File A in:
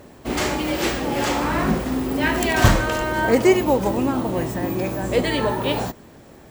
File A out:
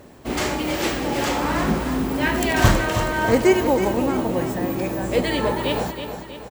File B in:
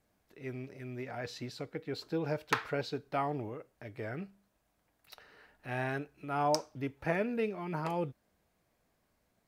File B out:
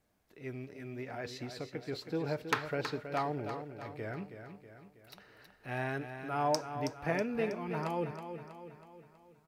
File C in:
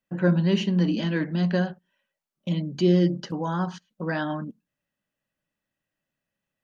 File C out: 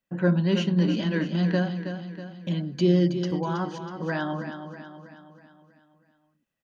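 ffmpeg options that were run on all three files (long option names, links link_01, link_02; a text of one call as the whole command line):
ffmpeg -i in.wav -af "aecho=1:1:322|644|966|1288|1610|1932:0.355|0.181|0.0923|0.0471|0.024|0.0122,volume=-1dB" out.wav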